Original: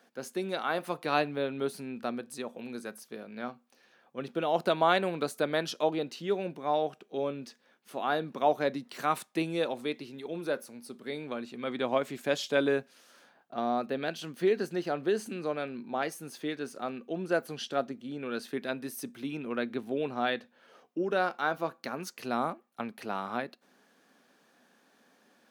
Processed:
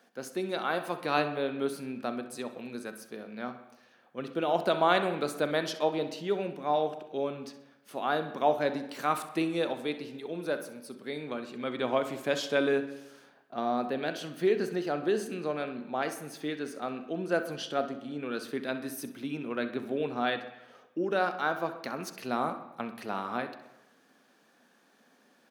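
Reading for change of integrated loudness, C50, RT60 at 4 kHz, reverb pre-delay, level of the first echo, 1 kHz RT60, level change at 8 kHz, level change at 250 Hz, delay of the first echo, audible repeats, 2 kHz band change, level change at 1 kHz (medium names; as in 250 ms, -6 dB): +0.5 dB, 10.0 dB, 0.95 s, 36 ms, -13.5 dB, 1.0 s, 0.0 dB, +1.0 dB, 65 ms, 2, +0.5 dB, +0.5 dB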